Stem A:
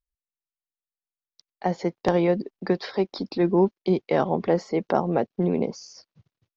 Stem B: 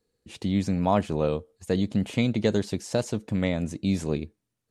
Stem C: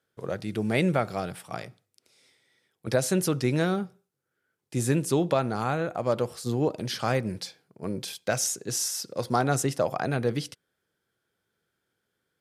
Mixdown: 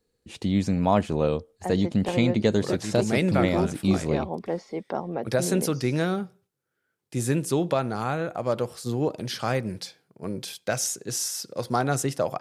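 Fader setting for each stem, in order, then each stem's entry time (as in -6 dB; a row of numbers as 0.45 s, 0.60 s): -7.5 dB, +1.5 dB, 0.0 dB; 0.00 s, 0.00 s, 2.40 s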